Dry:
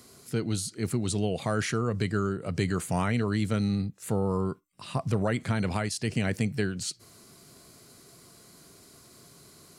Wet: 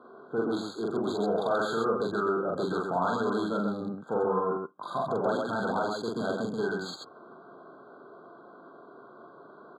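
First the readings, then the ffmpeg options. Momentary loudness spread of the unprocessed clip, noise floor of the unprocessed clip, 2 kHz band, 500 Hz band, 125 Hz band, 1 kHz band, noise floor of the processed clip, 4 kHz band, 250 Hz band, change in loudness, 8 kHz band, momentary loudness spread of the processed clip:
7 LU, -55 dBFS, -1.0 dB, +4.0 dB, -12.5 dB, +5.5 dB, -52 dBFS, -4.0 dB, -2.5 dB, -0.5 dB, under -10 dB, 8 LU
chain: -filter_complex "[0:a]asplit=2[a][b];[b]highpass=f=720:p=1,volume=22dB,asoftclip=type=tanh:threshold=-14.5dB[c];[a][c]amix=inputs=2:normalize=0,lowpass=f=1.6k:p=1,volume=-6dB,acrossover=split=2000[d][e];[e]acrusher=bits=4:mix=0:aa=0.5[f];[d][f]amix=inputs=2:normalize=0,highpass=250,lowpass=6.1k,aecho=1:1:43.73|131.2:0.891|0.708,afftfilt=real='re*eq(mod(floor(b*sr/1024/1600),2),0)':imag='im*eq(mod(floor(b*sr/1024/1600),2),0)':win_size=1024:overlap=0.75,volume=-4.5dB"

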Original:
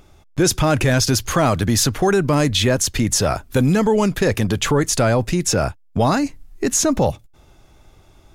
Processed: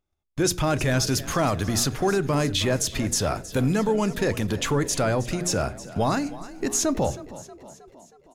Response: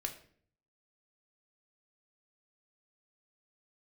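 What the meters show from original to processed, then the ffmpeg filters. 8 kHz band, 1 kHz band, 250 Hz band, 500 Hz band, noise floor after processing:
-6.0 dB, -6.0 dB, -6.5 dB, -6.0 dB, -58 dBFS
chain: -filter_complex "[0:a]bandreject=f=59.22:t=h:w=4,bandreject=f=118.44:t=h:w=4,bandreject=f=177.66:t=h:w=4,bandreject=f=236.88:t=h:w=4,bandreject=f=296.1:t=h:w=4,bandreject=f=355.32:t=h:w=4,bandreject=f=414.54:t=h:w=4,bandreject=f=473.76:t=h:w=4,agate=range=-26dB:threshold=-44dB:ratio=16:detection=peak,asplit=6[a][b][c][d][e][f];[b]adelay=317,afreqshift=34,volume=-16.5dB[g];[c]adelay=634,afreqshift=68,volume=-21.5dB[h];[d]adelay=951,afreqshift=102,volume=-26.6dB[i];[e]adelay=1268,afreqshift=136,volume=-31.6dB[j];[f]adelay=1585,afreqshift=170,volume=-36.6dB[k];[a][g][h][i][j][k]amix=inputs=6:normalize=0,asplit=2[l][m];[1:a]atrim=start_sample=2205[n];[m][n]afir=irnorm=-1:irlink=0,volume=-10.5dB[o];[l][o]amix=inputs=2:normalize=0,volume=-8dB"

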